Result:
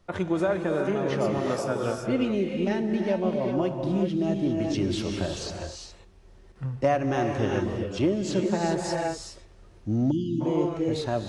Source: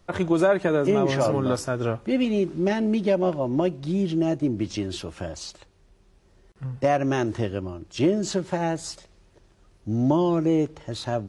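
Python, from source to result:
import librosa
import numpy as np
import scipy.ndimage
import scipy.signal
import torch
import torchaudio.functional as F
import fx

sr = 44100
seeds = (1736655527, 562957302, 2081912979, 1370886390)

y = fx.high_shelf(x, sr, hz=5700.0, db=-4.5)
y = fx.rev_gated(y, sr, seeds[0], gate_ms=430, shape='rising', drr_db=2.5)
y = fx.rider(y, sr, range_db=5, speed_s=0.5)
y = fx.highpass(y, sr, hz=180.0, slope=6, at=(1.38, 1.98))
y = fx.spec_erase(y, sr, start_s=10.11, length_s=0.3, low_hz=350.0, high_hz=2600.0)
y = F.gain(torch.from_numpy(y), -3.5).numpy()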